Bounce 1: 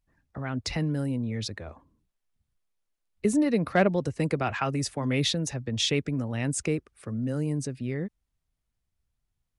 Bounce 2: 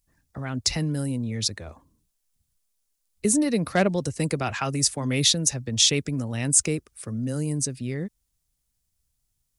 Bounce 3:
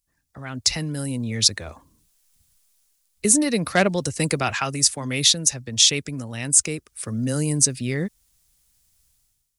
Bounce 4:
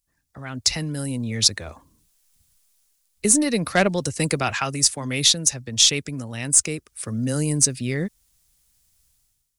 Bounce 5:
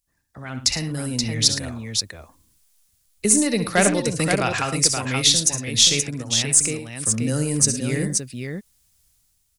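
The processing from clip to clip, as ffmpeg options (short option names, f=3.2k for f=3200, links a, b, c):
-af "bass=f=250:g=2,treble=f=4k:g=15"
-af "dynaudnorm=f=120:g=7:m=15dB,tiltshelf=f=970:g=-3.5,volume=-4.5dB"
-af "aeval=exprs='0.891*(cos(1*acos(clip(val(0)/0.891,-1,1)))-cos(1*PI/2))+0.0112*(cos(6*acos(clip(val(0)/0.891,-1,1)))-cos(6*PI/2))':c=same"
-af "aecho=1:1:61|70|109|527:0.237|0.251|0.168|0.531"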